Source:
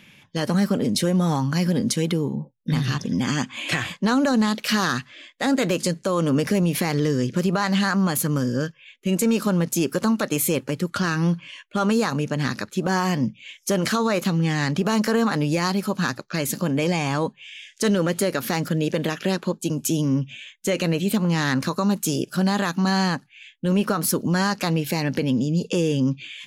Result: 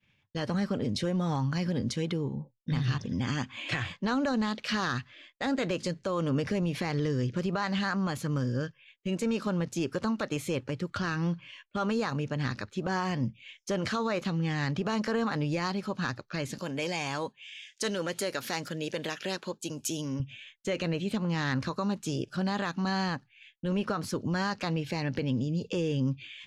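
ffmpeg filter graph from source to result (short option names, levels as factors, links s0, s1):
-filter_complex "[0:a]asettb=1/sr,asplit=3[s0][s1][s2];[s0]atrim=end=16.584[s3];[s1]atrim=start=16.58:end=20.2,asetpts=PTS-STARTPTS,afade=t=in:d=0.004:c=qsin,afade=t=out:st=3.616:d=0.004:c=qsin,aemphasis=mode=production:type=bsi,bandreject=f=1200:w=18[s4];[s2]atrim=start=20.196[s5];[s3][s4]acrossfade=d=0.004:c1=hsin:c2=qsin[s6];[s6][s5]acrossfade=d=0.004:c1=qsin:c2=hsin,agate=range=0.0224:threshold=0.00794:ratio=3:detection=peak,lowpass=5100,lowshelf=f=130:t=q:w=1.5:g=8,volume=0.422"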